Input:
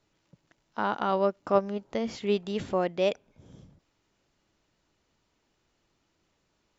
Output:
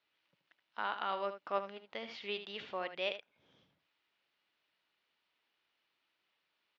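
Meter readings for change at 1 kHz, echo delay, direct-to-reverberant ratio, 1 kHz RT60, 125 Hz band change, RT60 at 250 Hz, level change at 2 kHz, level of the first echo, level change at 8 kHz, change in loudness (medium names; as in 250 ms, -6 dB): -8.5 dB, 76 ms, no reverb, no reverb, -22.0 dB, no reverb, -3.0 dB, -10.5 dB, no reading, -11.0 dB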